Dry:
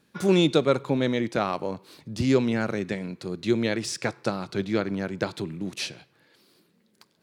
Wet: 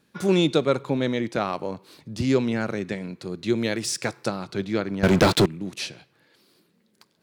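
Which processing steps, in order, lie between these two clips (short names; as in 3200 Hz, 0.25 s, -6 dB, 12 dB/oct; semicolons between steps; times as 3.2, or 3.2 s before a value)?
3.56–4.27 high shelf 8500 Hz -> 5900 Hz +10.5 dB; 5.03–5.46 sample leveller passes 5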